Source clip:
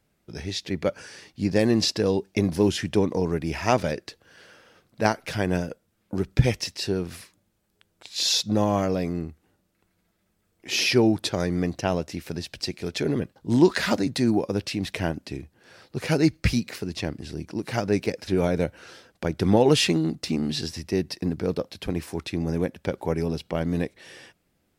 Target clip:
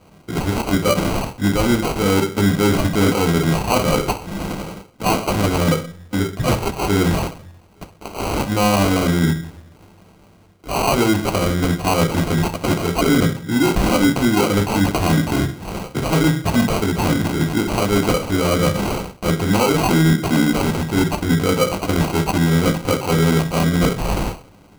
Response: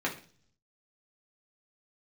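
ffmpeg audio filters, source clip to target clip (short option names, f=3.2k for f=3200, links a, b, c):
-filter_complex "[0:a]equalizer=f=310:t=o:w=2.6:g=-10.5,areverse,acompressor=threshold=-41dB:ratio=12,areverse[a];[1:a]atrim=start_sample=2205[b];[a][b]afir=irnorm=-1:irlink=0,apsyclip=29dB,acrusher=samples=25:mix=1:aa=0.000001,volume=-8dB"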